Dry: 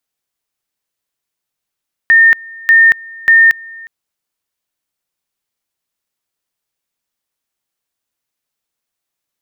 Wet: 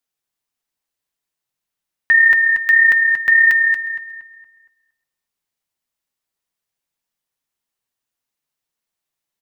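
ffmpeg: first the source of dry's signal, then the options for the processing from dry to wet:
-f lavfi -i "aevalsrc='pow(10,(-3.5-25*gte(mod(t,0.59),0.23))/20)*sin(2*PI*1820*t)':d=1.77:s=44100"
-filter_complex "[0:a]asplit=2[s0][s1];[s1]aecho=0:1:232:0.355[s2];[s0][s2]amix=inputs=2:normalize=0,flanger=delay=4.2:depth=3.8:regen=-54:speed=1.7:shape=sinusoidal,asplit=2[s3][s4];[s4]adelay=233,lowpass=f=2200:p=1,volume=0.398,asplit=2[s5][s6];[s6]adelay=233,lowpass=f=2200:p=1,volume=0.43,asplit=2[s7][s8];[s8]adelay=233,lowpass=f=2200:p=1,volume=0.43,asplit=2[s9][s10];[s10]adelay=233,lowpass=f=2200:p=1,volume=0.43,asplit=2[s11][s12];[s12]adelay=233,lowpass=f=2200:p=1,volume=0.43[s13];[s5][s7][s9][s11][s13]amix=inputs=5:normalize=0[s14];[s3][s14]amix=inputs=2:normalize=0"

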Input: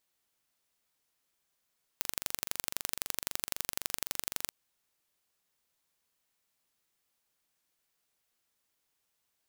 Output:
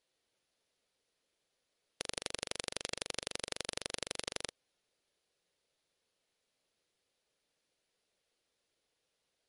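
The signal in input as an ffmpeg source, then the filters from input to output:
-f lavfi -i "aevalsrc='0.668*eq(mod(n,1853),0)*(0.5+0.5*eq(mod(n,3706),0))':d=2.51:s=44100"
-af "equalizer=f=500:t=o:w=1:g=10,equalizer=f=1000:t=o:w=1:g=-5,equalizer=f=4000:t=o:w=1:g=4,equalizer=f=8000:t=o:w=1:g=-7" -ar 44100 -c:a libmp3lame -b:a 48k

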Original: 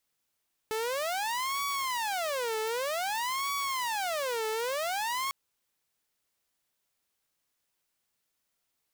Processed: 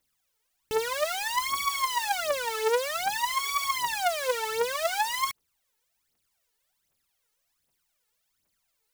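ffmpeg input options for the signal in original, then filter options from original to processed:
-f lavfi -i "aevalsrc='0.0447*(2*mod((783*t-347/(2*PI*0.53)*sin(2*PI*0.53*t)),1)-1)':d=4.6:s=44100"
-af "aphaser=in_gain=1:out_gain=1:delay=2.4:decay=0.73:speed=1.3:type=triangular"

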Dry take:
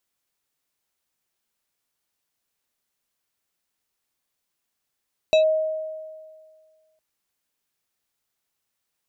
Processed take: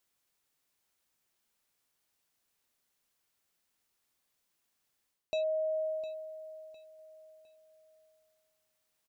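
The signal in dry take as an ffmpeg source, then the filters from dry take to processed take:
-f lavfi -i "aevalsrc='0.251*pow(10,-3*t/1.86)*sin(2*PI*629*t+0.51*clip(1-t/0.11,0,1)*sin(2*PI*5.15*629*t))':d=1.66:s=44100"
-af "areverse,acompressor=threshold=0.0282:ratio=8,areverse,aecho=1:1:707|1414|2121:0.211|0.0761|0.0274"

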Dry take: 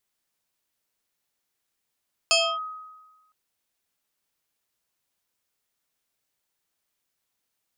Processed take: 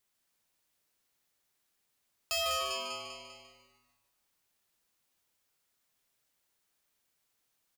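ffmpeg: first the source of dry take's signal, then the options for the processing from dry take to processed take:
-f lavfi -i "aevalsrc='0.178*pow(10,-3*t/1.23)*sin(2*PI*1260*t+3.2*clip(1-t/0.28,0,1)*sin(2*PI*1.53*1260*t))':d=1.01:s=44100"
-filter_complex "[0:a]asplit=2[s0][s1];[s1]aecho=0:1:198|396|594|792|990:0.299|0.143|0.0688|0.033|0.0158[s2];[s0][s2]amix=inputs=2:normalize=0,asoftclip=type=tanh:threshold=0.0282,asplit=2[s3][s4];[s4]asplit=5[s5][s6][s7][s8][s9];[s5]adelay=148,afreqshift=-140,volume=0.447[s10];[s6]adelay=296,afreqshift=-280,volume=0.202[s11];[s7]adelay=444,afreqshift=-420,volume=0.0902[s12];[s8]adelay=592,afreqshift=-560,volume=0.0407[s13];[s9]adelay=740,afreqshift=-700,volume=0.0184[s14];[s10][s11][s12][s13][s14]amix=inputs=5:normalize=0[s15];[s3][s15]amix=inputs=2:normalize=0"

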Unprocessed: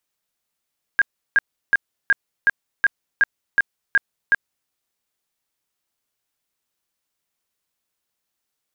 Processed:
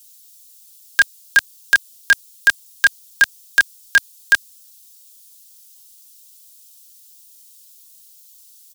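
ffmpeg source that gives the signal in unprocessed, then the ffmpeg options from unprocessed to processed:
-f lavfi -i "aevalsrc='0.282*sin(2*PI*1620*mod(t,0.37))*lt(mod(t,0.37),44/1620)':d=3.7:s=44100"
-filter_complex "[0:a]highshelf=f=2500:g=10.5,aecho=1:1:3.2:0.69,acrossover=split=130[s0][s1];[s1]aexciter=amount=7:drive=5.8:freq=2900[s2];[s0][s2]amix=inputs=2:normalize=0"

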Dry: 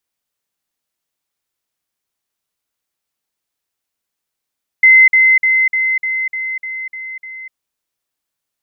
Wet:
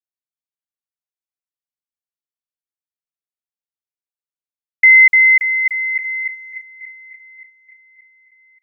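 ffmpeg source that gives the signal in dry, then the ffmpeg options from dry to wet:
-f lavfi -i "aevalsrc='pow(10,(-3.5-3*floor(t/0.3))/20)*sin(2*PI*2060*t)*clip(min(mod(t,0.3),0.25-mod(t,0.3))/0.005,0,1)':d=2.7:s=44100"
-af "agate=range=0.0708:threshold=0.0891:ratio=16:detection=peak,aecho=1:1:577|1154|1731|2308|2885:0.282|0.127|0.0571|0.0257|0.0116"

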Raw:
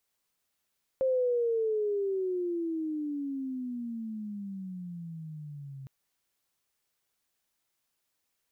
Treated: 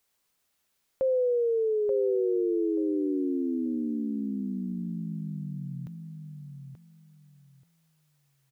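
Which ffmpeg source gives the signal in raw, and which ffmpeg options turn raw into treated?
-f lavfi -i "aevalsrc='pow(10,(-23.5-17*t/4.86)/20)*sin(2*PI*531*4.86/(-24*log(2)/12)*(exp(-24*log(2)/12*t/4.86)-1))':d=4.86:s=44100"
-filter_complex "[0:a]asplit=2[s0][s1];[s1]alimiter=level_in=2.24:limit=0.0631:level=0:latency=1,volume=0.447,volume=0.708[s2];[s0][s2]amix=inputs=2:normalize=0,asplit=2[s3][s4];[s4]adelay=882,lowpass=f=2000:p=1,volume=0.531,asplit=2[s5][s6];[s6]adelay=882,lowpass=f=2000:p=1,volume=0.21,asplit=2[s7][s8];[s8]adelay=882,lowpass=f=2000:p=1,volume=0.21[s9];[s3][s5][s7][s9]amix=inputs=4:normalize=0"

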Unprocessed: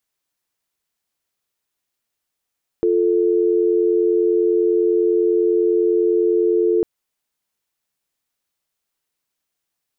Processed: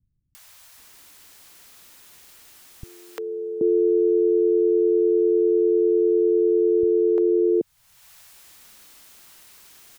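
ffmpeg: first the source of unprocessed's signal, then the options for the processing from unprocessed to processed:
-f lavfi -i "aevalsrc='0.15*(sin(2*PI*350*t)+sin(2*PI*440*t))':d=4:s=44100"
-filter_complex "[0:a]acompressor=mode=upward:threshold=0.0562:ratio=2.5,acrossover=split=150|550[s0][s1][s2];[s2]adelay=350[s3];[s1]adelay=780[s4];[s0][s4][s3]amix=inputs=3:normalize=0"

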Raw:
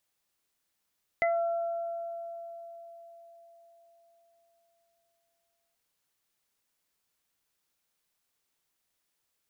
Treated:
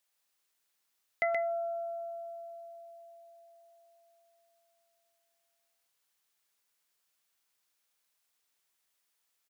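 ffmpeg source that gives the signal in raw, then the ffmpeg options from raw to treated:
-f lavfi -i "aevalsrc='0.0668*pow(10,-3*t/4.59)*sin(2*PI*677*t)+0.0126*pow(10,-3*t/2.17)*sin(2*PI*1354*t)+0.075*pow(10,-3*t/0.2)*sin(2*PI*2031*t)':d=4.53:s=44100"
-af "lowshelf=f=420:g=-11,aecho=1:1:126:0.596"

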